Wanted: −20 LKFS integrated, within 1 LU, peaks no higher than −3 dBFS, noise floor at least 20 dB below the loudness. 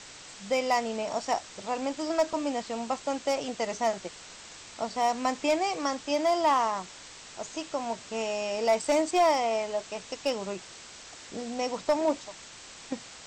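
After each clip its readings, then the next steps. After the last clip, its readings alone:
share of clipped samples 0.3%; peaks flattened at −17.0 dBFS; background noise floor −47 dBFS; target noise floor −50 dBFS; integrated loudness −29.5 LKFS; sample peak −17.0 dBFS; target loudness −20.0 LKFS
→ clipped peaks rebuilt −17 dBFS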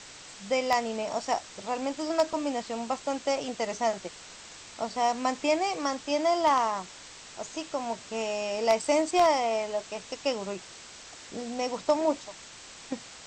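share of clipped samples 0.0%; background noise floor −47 dBFS; target noise floor −49 dBFS
→ broadband denoise 6 dB, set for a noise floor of −47 dBFS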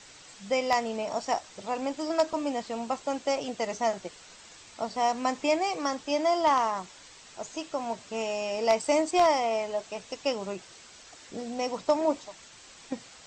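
background noise floor −51 dBFS; integrated loudness −29.0 LKFS; sample peak −8.0 dBFS; target loudness −20.0 LKFS
→ level +9 dB
brickwall limiter −3 dBFS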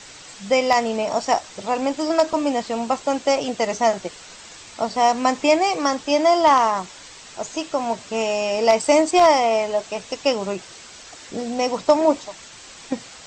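integrated loudness −20.5 LKFS; sample peak −3.0 dBFS; background noise floor −42 dBFS

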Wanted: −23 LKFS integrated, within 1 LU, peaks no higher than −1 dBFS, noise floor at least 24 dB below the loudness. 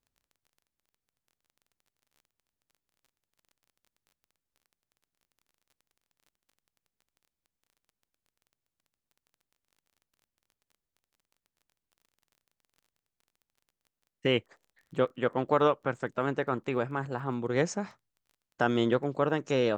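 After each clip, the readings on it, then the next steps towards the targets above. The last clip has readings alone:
crackle rate 23 per second; integrated loudness −30.0 LKFS; sample peak −11.0 dBFS; target loudness −23.0 LKFS
→ click removal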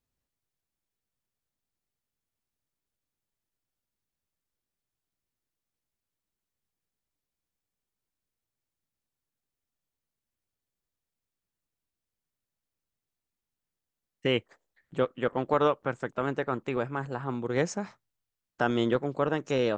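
crackle rate 0 per second; integrated loudness −30.0 LKFS; sample peak −11.0 dBFS; target loudness −23.0 LKFS
→ level +7 dB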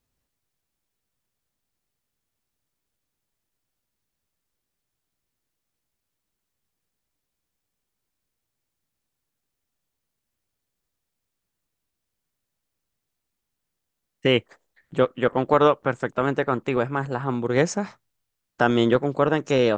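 integrated loudness −23.0 LKFS; sample peak −4.0 dBFS; background noise floor −82 dBFS

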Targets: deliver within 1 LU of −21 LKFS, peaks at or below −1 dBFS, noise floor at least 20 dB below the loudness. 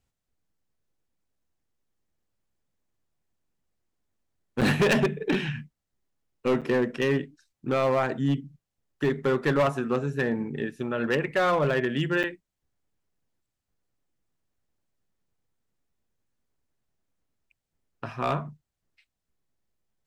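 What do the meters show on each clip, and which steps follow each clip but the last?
share of clipped samples 1.1%; peaks flattened at −18.0 dBFS; number of dropouts 3; longest dropout 7.1 ms; integrated loudness −26.5 LKFS; sample peak −18.0 dBFS; target loudness −21.0 LKFS
→ clipped peaks rebuilt −18 dBFS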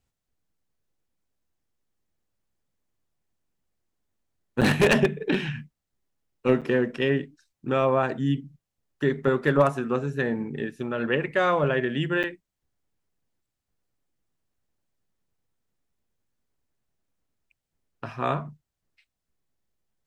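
share of clipped samples 0.0%; number of dropouts 3; longest dropout 7.1 ms
→ repair the gap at 0:04.61/0:06.61/0:12.23, 7.1 ms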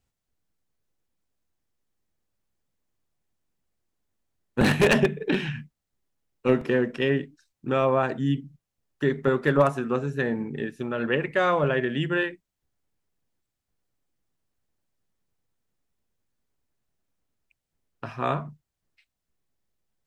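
number of dropouts 0; integrated loudness −25.0 LKFS; sample peak −8.0 dBFS; target loudness −21.0 LKFS
→ level +4 dB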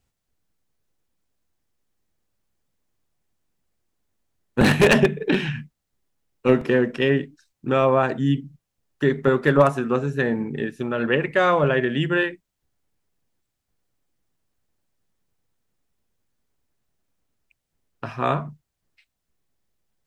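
integrated loudness −21.0 LKFS; sample peak −4.0 dBFS; background noise floor −80 dBFS

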